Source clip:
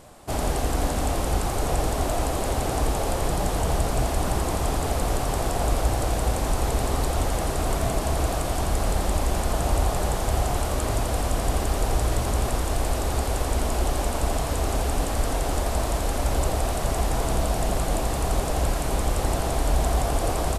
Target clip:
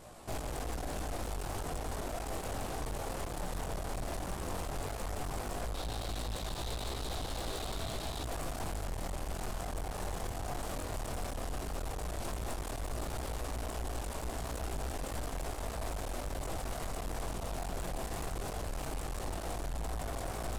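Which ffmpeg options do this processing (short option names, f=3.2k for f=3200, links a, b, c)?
-filter_complex "[0:a]asettb=1/sr,asplit=3[a][b][c];[a]atrim=end=5.744[d];[b]atrim=start=5.74:end=8.23,asetpts=PTS-STARTPTS,afade=t=in:d=0.004:c=qsin,afade=t=out:st=2.486:d=0.004:c=qsin,equalizer=f=3.8k:w=2.6:g=13.5[e];[c]atrim=start=8.226[f];[d][e]acrossfade=d=0.004:c1=hsin:c2=qsin[g];[g][f]acrossfade=d=0.004:c1=qsin:c2=hsin,alimiter=limit=-21dB:level=0:latency=1:release=183,flanger=delay=18:depth=4.5:speed=0.14,aeval=exprs='(tanh(70.8*val(0)+0.55)-tanh(0.55))/70.8':c=same,volume=2dB"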